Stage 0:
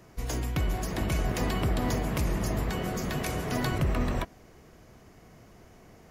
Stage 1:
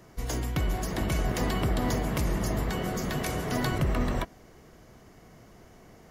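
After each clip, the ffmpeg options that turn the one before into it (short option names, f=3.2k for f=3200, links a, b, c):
-af "equalizer=f=81:t=o:w=0.77:g=-2.5,bandreject=f=2.5k:w=17,volume=1dB"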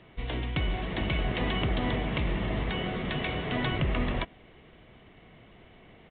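-af "aexciter=amount=1.5:drive=9.1:freq=2.1k,aresample=8000,aresample=44100,volume=-1.5dB"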